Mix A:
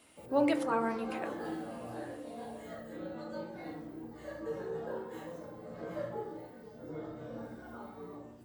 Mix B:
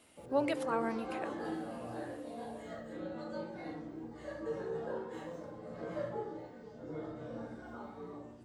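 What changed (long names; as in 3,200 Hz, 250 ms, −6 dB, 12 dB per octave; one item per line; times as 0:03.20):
speech: send −10.0 dB
background: add Savitzky-Golay smoothing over 9 samples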